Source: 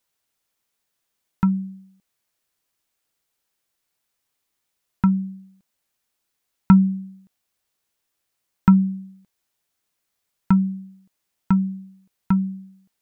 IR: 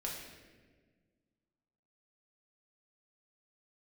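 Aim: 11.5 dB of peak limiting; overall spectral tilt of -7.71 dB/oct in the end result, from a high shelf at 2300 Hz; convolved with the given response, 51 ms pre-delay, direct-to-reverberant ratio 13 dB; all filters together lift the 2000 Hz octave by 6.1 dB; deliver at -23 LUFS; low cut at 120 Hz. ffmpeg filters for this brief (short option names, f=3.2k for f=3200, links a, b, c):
-filter_complex "[0:a]highpass=120,equalizer=f=2k:t=o:g=7,highshelf=f=2.3k:g=3,alimiter=limit=-12.5dB:level=0:latency=1,asplit=2[a][b];[1:a]atrim=start_sample=2205,adelay=51[c];[b][c]afir=irnorm=-1:irlink=0,volume=-14dB[d];[a][d]amix=inputs=2:normalize=0,volume=1.5dB"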